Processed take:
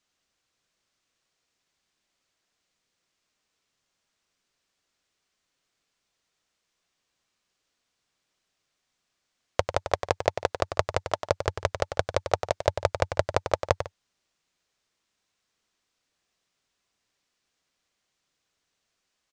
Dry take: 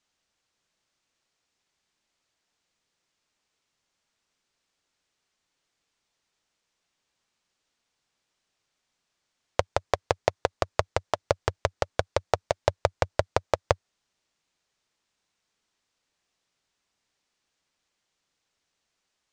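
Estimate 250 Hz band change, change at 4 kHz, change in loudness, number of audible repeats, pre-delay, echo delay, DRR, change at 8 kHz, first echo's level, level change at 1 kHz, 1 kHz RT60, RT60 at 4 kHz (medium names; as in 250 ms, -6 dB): +0.5 dB, +0.5 dB, +0.5 dB, 2, no reverb, 96 ms, no reverb, +0.5 dB, -9.0 dB, -0.5 dB, no reverb, no reverb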